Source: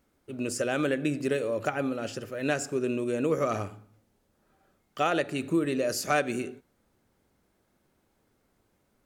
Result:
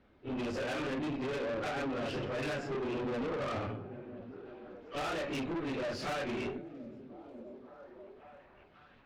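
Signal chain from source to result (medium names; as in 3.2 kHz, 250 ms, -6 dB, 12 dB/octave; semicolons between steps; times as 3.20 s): phase randomisation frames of 100 ms; low-pass 3.7 kHz 24 dB/octave; compression 6:1, threshold -32 dBFS, peak gain reduction 12.5 dB; valve stage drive 42 dB, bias 0.5; repeats whose band climbs or falls 540 ms, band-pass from 170 Hz, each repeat 0.7 oct, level -8 dB; trim +8.5 dB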